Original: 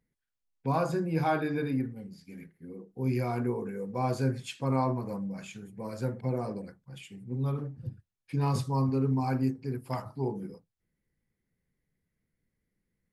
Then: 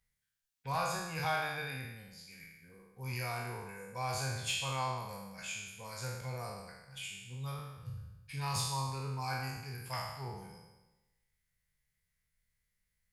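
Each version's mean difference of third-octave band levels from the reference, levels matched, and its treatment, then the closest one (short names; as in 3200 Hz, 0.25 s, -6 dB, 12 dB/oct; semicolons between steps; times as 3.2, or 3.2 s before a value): 12.0 dB: spectral trails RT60 1.07 s; passive tone stack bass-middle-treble 10-0-10; in parallel at -3.5 dB: one-sided clip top -35.5 dBFS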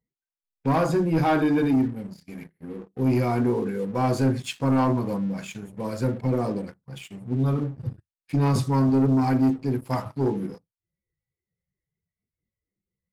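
2.5 dB: spectral noise reduction 16 dB; dynamic EQ 290 Hz, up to +6 dB, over -44 dBFS, Q 2.7; sample leveller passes 2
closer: second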